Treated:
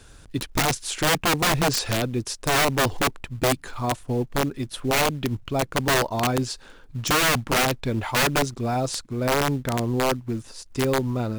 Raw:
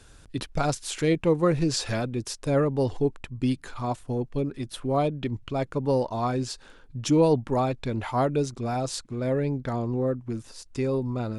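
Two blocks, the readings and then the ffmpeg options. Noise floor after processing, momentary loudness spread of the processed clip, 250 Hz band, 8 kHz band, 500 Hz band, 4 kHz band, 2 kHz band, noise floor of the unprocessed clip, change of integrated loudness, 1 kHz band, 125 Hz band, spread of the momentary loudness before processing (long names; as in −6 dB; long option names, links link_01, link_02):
−48 dBFS, 9 LU, 0.0 dB, +10.0 dB, 0.0 dB, +11.0 dB, +14.0 dB, −52 dBFS, +3.5 dB, +6.0 dB, +1.0 dB, 10 LU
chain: -filter_complex "[0:a]asplit=2[link_01][link_02];[link_02]acrusher=bits=4:mode=log:mix=0:aa=0.000001,volume=-6dB[link_03];[link_01][link_03]amix=inputs=2:normalize=0,aeval=exprs='(mod(5.62*val(0)+1,2)-1)/5.62':channel_layout=same"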